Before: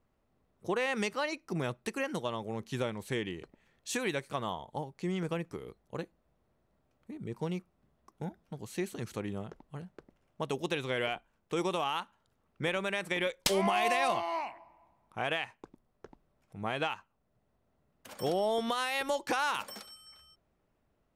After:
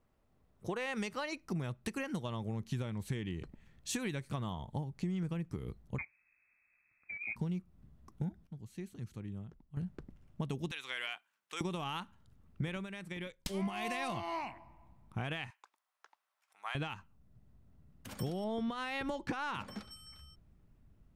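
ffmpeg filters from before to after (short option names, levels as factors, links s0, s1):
-filter_complex "[0:a]asettb=1/sr,asplit=3[s0][s1][s2];[s0]atrim=end=5.984[s3];[s1]atrim=start=5.98:end=7.36,asetpts=PTS-STARTPTS,afade=t=in:d=0.004:c=qsin,afade=t=out:st=1.376:d=0.004:c=qsin,lowpass=f=2200:t=q:w=0.5098,lowpass=f=2200:t=q:w=0.6013,lowpass=f=2200:t=q:w=0.9,lowpass=f=2200:t=q:w=2.563,afreqshift=-2600[s4];[s2]atrim=start=7.356[s5];[s3][s4]acrossfade=d=0.004:c1=hsin:c2=qsin[s6];[s6][s5]acrossfade=d=0.004:c1=qsin:c2=hsin,asettb=1/sr,asplit=3[s7][s8][s9];[s7]atrim=end=10.714[s10];[s8]atrim=start=10.71:end=11.61,asetpts=PTS-STARTPTS,afade=t=in:d=0.004:c=qsin,afade=t=out:st=0.896:d=0.004:c=qsin,highpass=1200[s11];[s9]atrim=start=11.606[s12];[s10][s11]acrossfade=d=0.004:c1=hsin:c2=qsin[s13];[s13][s12]acrossfade=d=0.004:c1=qsin:c2=hsin,asettb=1/sr,asplit=3[s14][s15][s16];[s14]atrim=end=15.504[s17];[s15]atrim=start=15.5:end=16.75,asetpts=PTS-STARTPTS,afade=t=in:d=0.004:c=qsin,afade=t=out:st=1.246:d=0.004:c=qsin,highpass=f=880:w=0.5412,highpass=f=880:w=1.3066[s18];[s16]atrim=start=16.746[s19];[s17][s18]acrossfade=d=0.004:c1=hsin:c2=qsin[s20];[s20][s19]acrossfade=d=0.004:c1=qsin:c2=hsin,asettb=1/sr,asplit=3[s21][s22][s23];[s21]atrim=end=18.444[s24];[s22]atrim=start=18.44:end=19.91,asetpts=PTS-STARTPTS,afade=t=in:d=0.004:c=qsin,afade=t=out:st=1.466:d=0.004:c=qsin,aemphasis=mode=reproduction:type=75fm[s25];[s23]atrim=start=19.906[s26];[s24][s25]acrossfade=d=0.004:c1=hsin:c2=qsin[s27];[s27][s26]acrossfade=d=0.004:c1=qsin:c2=hsin,asplit=5[s28][s29][s30][s31][s32];[s28]atrim=end=8.47,asetpts=PTS-STARTPTS,afade=t=out:st=8.28:d=0.19:c=log:silence=0.188365[s33];[s29]atrim=start=8.47:end=9.77,asetpts=PTS-STARTPTS,volume=0.188[s34];[s30]atrim=start=9.77:end=12.87,asetpts=PTS-STARTPTS,afade=t=in:d=0.19:c=log:silence=0.188365,afade=t=out:st=2.98:d=0.12:silence=0.251189[s35];[s31]atrim=start=12.87:end=13.53,asetpts=PTS-STARTPTS,volume=0.251[s36];[s32]atrim=start=13.53,asetpts=PTS-STARTPTS,afade=t=in:d=0.12:silence=0.251189[s37];[s33][s34][s35][s36][s37]concat=n=5:v=0:a=1,asubboost=boost=6:cutoff=210,acompressor=threshold=0.02:ratio=6"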